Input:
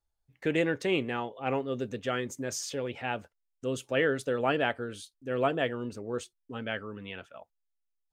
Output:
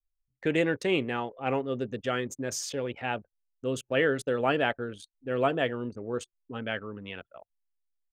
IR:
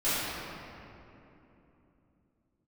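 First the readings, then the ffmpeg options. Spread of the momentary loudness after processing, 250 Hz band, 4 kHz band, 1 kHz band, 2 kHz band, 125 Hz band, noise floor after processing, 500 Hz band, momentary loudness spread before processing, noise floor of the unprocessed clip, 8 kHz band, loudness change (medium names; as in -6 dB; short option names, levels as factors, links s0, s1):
12 LU, +1.5 dB, +1.5 dB, +1.5 dB, +1.5 dB, +1.5 dB, under -85 dBFS, +1.5 dB, 12 LU, -81 dBFS, +1.0 dB, +1.5 dB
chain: -af "anlmdn=0.1,volume=1.19"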